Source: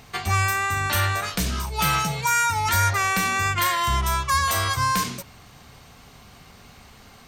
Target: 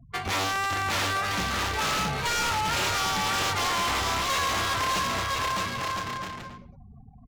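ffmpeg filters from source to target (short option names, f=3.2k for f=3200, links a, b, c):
-filter_complex "[0:a]afftfilt=real='re*gte(hypot(re,im),0.0141)':imag='im*gte(hypot(re,im),0.0141)':win_size=1024:overlap=0.75,crystalizer=i=2.5:c=0,aemphasis=mode=reproduction:type=75fm,aresample=16000,aeval=exprs='(mod(5.62*val(0)+1,2)-1)/5.62':c=same,aresample=44100,acrossover=split=190[a][b];[a]acompressor=threshold=-33dB:ratio=10[c];[c][b]amix=inputs=2:normalize=0,aecho=1:1:610|1006|1264|1432|1541:0.631|0.398|0.251|0.158|0.1,asoftclip=type=tanh:threshold=-23dB,adynamicsmooth=sensitivity=7.5:basefreq=1.3k"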